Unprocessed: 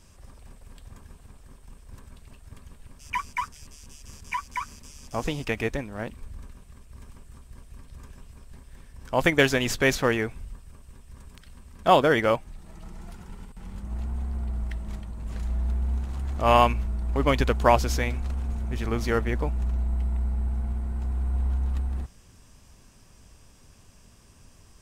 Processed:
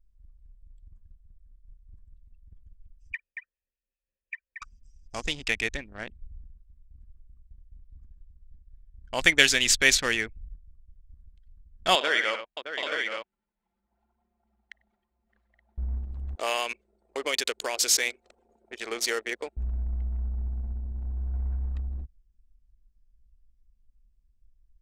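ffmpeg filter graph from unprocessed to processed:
-filter_complex "[0:a]asettb=1/sr,asplit=3[a][b][c];[a]atrim=end=3.134[d];[b]atrim=start=3.13:end=4.62,asetpts=PTS-STARTPTS,afade=t=in:d=0.004:c=qsin,afade=t=out:st=1.486:d=0.004:c=qsin,asplit=3[e][f][g];[e]bandpass=f=530:t=q:w=8,volume=0dB[h];[f]bandpass=f=1.84k:t=q:w=8,volume=-6dB[i];[g]bandpass=f=2.48k:t=q:w=8,volume=-9dB[j];[h][i][j]amix=inputs=3:normalize=0,equalizer=f=1.5k:w=0.69:g=6.5[k];[c]atrim=start=4.616[l];[d][k]acrossfade=d=0.004:c1=hsin:c2=qsin[m];[m][l]acrossfade=d=0.004:c1=qsin:c2=hsin,asettb=1/sr,asplit=3[n][o][p];[n]atrim=end=11.954[q];[o]atrim=start=11.95:end=15.78,asetpts=PTS-STARTPTS,afade=t=in:d=0.004:c=qsin,afade=t=out:st=3.826:d=0.004:c=qsin,highpass=470,aemphasis=mode=reproduction:type=50fm,aecho=1:1:56|97|617|823|874:0.282|0.376|0.335|0.398|0.501,atrim=end_sample=168903[r];[p]atrim=start=15.776[s];[q][r]acrossfade=d=0.004:c1=hsin:c2=qsin[t];[t][s]acrossfade=d=0.004:c1=qsin:c2=hsin,asettb=1/sr,asplit=3[u][v][w];[u]atrim=end=16.354[x];[v]atrim=start=16.35:end=19.57,asetpts=PTS-STARTPTS,afade=t=in:d=0.004:c=qsin,afade=t=out:st=3.216:d=0.004:c=qsin,highshelf=f=8.2k:g=11,acompressor=threshold=-20dB:ratio=10:attack=3.2:release=140:knee=1:detection=peak,highpass=f=440:t=q:w=2.1[y];[w]atrim=start=19.566[z];[x][y]acrossfade=d=0.004:c1=hsin:c2=qsin[aa];[aa][z]acrossfade=d=0.004:c1=qsin:c2=hsin,adynamicequalizer=threshold=0.0141:dfrequency=800:dqfactor=1:tfrequency=800:tqfactor=1:attack=5:release=100:ratio=0.375:range=3:mode=cutabove:tftype=bell,anlmdn=3.98,equalizer=f=125:t=o:w=1:g=-11,equalizer=f=250:t=o:w=1:g=-4,equalizer=f=500:t=o:w=1:g=-4,equalizer=f=1k:t=o:w=1:g=-5,equalizer=f=2k:t=o:w=1:g=5,equalizer=f=4k:t=o:w=1:g=9,equalizer=f=8k:t=o:w=1:g=12,volume=-1.5dB"

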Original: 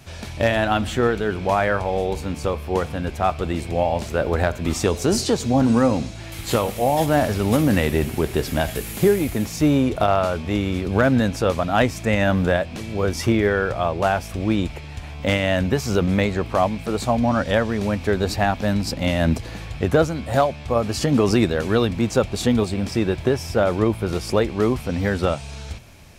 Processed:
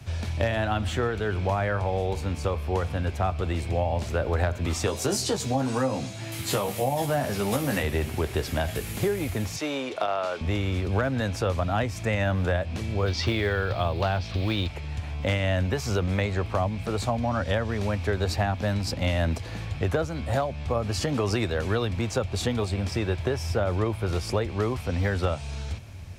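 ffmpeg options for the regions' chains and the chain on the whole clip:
-filter_complex "[0:a]asettb=1/sr,asplit=3[a][b][c];[a]atrim=end=4.864[d];[b]atrim=start=4.86:end=7.83,asetpts=PTS-STARTPTS,afade=t=in:d=0.004:c=qsin,afade=t=out:st=2.966:d=0.004:c=qsin,highpass=f=120:w=0.5412,highpass=f=120:w=1.3066,equalizer=f=13k:t=o:w=1.4:g=7,asplit=2[e][f];[f]adelay=15,volume=-5dB[g];[e][g]amix=inputs=2:normalize=0,atrim=end_sample=130977[h];[c]atrim=start=7.826[i];[d][h]acrossfade=d=0.004:c1=hsin:c2=qsin[j];[j][i]acrossfade=d=0.004:c1=qsin:c2=hsin,asettb=1/sr,asplit=3[k][l][m];[k]atrim=end=9.564[n];[l]atrim=start=9.56:end=10.41,asetpts=PTS-STARTPTS,afade=t=in:d=0.004:c=qsin,afade=t=out:st=0.846:d=0.004:c=qsin,highpass=370,lowpass=4.7k,aemphasis=mode=production:type=bsi[o];[m]atrim=start=10.406[p];[n][o]acrossfade=d=0.004:c1=hsin:c2=qsin[q];[q][p]acrossfade=d=0.004:c1=qsin:c2=hsin,asettb=1/sr,asplit=3[r][s][t];[r]atrim=end=13.064[u];[s]atrim=start=13.06:end=14.68,asetpts=PTS-STARTPTS,afade=t=in:d=0.004:c=qsin,afade=t=out:st=1.616:d=0.004:c=qsin,lowpass=f=4.2k:t=q:w=3.3,acrusher=bits=8:mode=log:mix=0:aa=0.000001[v];[t]atrim=start=14.676[w];[u][v]acrossfade=d=0.004:c1=hsin:c2=qsin[x];[x][w]acrossfade=d=0.004:c1=qsin:c2=hsin,highshelf=f=10k:g=-6.5,acrossover=split=150|420[y][z][aa];[y]acompressor=threshold=-40dB:ratio=4[ab];[z]acompressor=threshold=-34dB:ratio=4[ac];[aa]acompressor=threshold=-23dB:ratio=4[ad];[ab][ac][ad]amix=inputs=3:normalize=0,equalizer=f=89:t=o:w=0.99:g=15,volume=-2.5dB"

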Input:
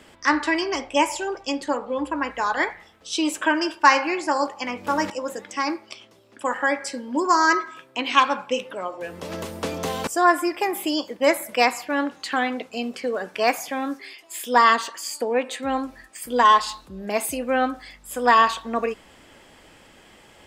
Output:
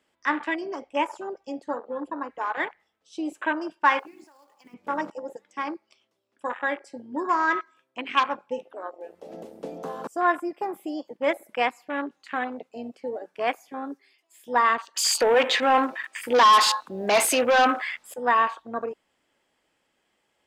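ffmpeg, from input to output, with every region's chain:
-filter_complex "[0:a]asettb=1/sr,asplit=3[a][b][c];[a]atrim=end=3.994[d];[b]atrim=start=3.99:end=4.74,asetpts=PTS-STARTPTS,afade=t=in:d=0.004:c=qsin,afade=t=out:st=0.746:d=0.004:c=qsin,highpass=f=200:p=1,acompressor=threshold=-31dB:ratio=8:attack=3.2:release=140:knee=1:detection=peak,acrusher=bits=3:mode=log:mix=0:aa=0.000001[e];[c]atrim=start=4.736[f];[d][e]acrossfade=d=0.004:c1=hsin:c2=qsin[g];[g][f]acrossfade=d=0.004:c1=qsin:c2=hsin,asettb=1/sr,asplit=3[h][i][j];[h]atrim=end=14.964[k];[i]atrim=start=14.96:end=18.14,asetpts=PTS-STARTPTS,afade=t=in:d=0.004:c=qsin,afade=t=out:st=3.176:d=0.004:c=qsin,asplit=2[l][m];[m]highpass=f=720:p=1,volume=26dB,asoftclip=type=tanh:threshold=-5dB[n];[l][n]amix=inputs=2:normalize=0,lowpass=f=6.2k:p=1,volume=-6dB,acrusher=bits=7:mode=log:mix=0:aa=0.000001[o];[j]atrim=start=18.136[p];[k][o]acrossfade=d=0.004:c1=hsin:c2=qsin[q];[q][p]acrossfade=d=0.004:c1=qsin:c2=hsin,lowshelf=f=140:g=-11.5,afwtdn=0.0501,volume=-4.5dB"

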